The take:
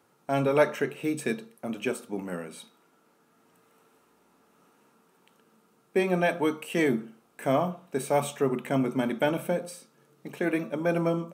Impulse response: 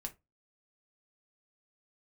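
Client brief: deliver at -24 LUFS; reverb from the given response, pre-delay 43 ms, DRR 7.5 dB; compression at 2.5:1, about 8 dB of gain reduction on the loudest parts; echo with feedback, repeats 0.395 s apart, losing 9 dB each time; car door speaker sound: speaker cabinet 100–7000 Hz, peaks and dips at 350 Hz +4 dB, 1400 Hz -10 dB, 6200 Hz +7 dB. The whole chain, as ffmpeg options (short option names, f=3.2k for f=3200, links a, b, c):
-filter_complex "[0:a]acompressor=threshold=-28dB:ratio=2.5,aecho=1:1:395|790|1185|1580:0.355|0.124|0.0435|0.0152,asplit=2[a][b];[1:a]atrim=start_sample=2205,adelay=43[c];[b][c]afir=irnorm=-1:irlink=0,volume=-5dB[d];[a][d]amix=inputs=2:normalize=0,highpass=100,equalizer=f=350:t=q:w=4:g=4,equalizer=f=1.4k:t=q:w=4:g=-10,equalizer=f=6.2k:t=q:w=4:g=7,lowpass=f=7k:w=0.5412,lowpass=f=7k:w=1.3066,volume=7.5dB"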